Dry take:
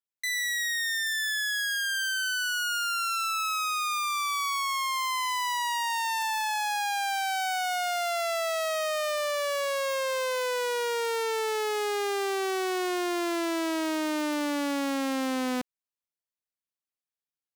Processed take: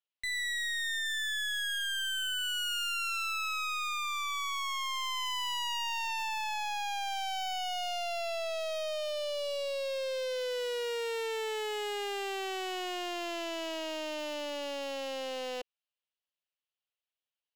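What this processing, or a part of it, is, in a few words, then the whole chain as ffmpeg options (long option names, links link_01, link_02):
megaphone: -af "highpass=520,lowpass=3500,equalizer=frequency=250:width_type=o:width=1:gain=-12,equalizer=frequency=500:width_type=o:width=1:gain=8,equalizer=frequency=4000:width_type=o:width=1:gain=7,equalizer=frequency=2900:width_type=o:width=0.37:gain=9,asoftclip=type=hard:threshold=-29.5dB,volume=-2.5dB"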